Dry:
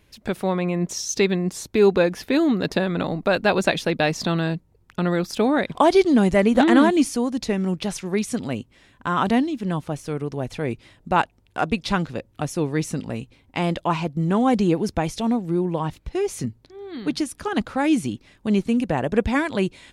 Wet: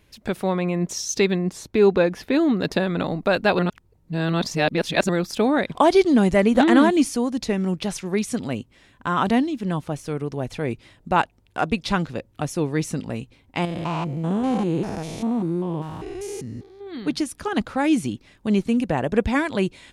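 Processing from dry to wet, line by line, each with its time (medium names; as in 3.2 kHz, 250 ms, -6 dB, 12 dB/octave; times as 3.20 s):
1.38–2.60 s: treble shelf 4.6 kHz -7 dB
3.59–5.09 s: reverse
13.65–16.87 s: spectrogram pixelated in time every 200 ms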